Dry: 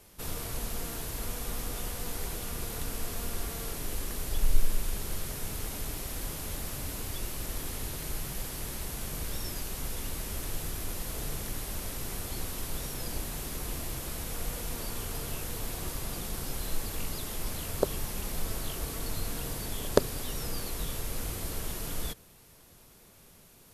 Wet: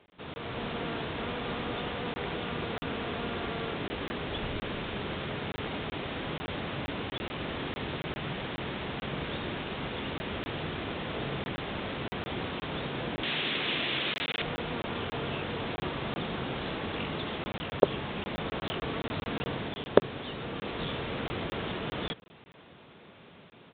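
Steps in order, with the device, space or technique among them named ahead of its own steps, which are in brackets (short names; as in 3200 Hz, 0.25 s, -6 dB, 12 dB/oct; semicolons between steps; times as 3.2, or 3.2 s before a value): call with lost packets (HPF 140 Hz 12 dB/oct; downsampling 8000 Hz; AGC gain up to 8 dB; packet loss packets of 20 ms random); 13.23–14.42 weighting filter D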